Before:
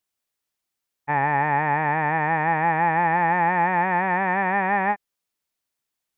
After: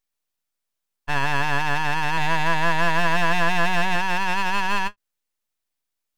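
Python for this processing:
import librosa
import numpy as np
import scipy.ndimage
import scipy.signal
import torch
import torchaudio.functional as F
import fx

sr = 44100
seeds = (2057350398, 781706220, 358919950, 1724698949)

y = fx.low_shelf(x, sr, hz=300.0, db=8.5, at=(2.17, 3.96))
y = np.abs(y)
y = fx.end_taper(y, sr, db_per_s=550.0)
y = y * librosa.db_to_amplitude(1.5)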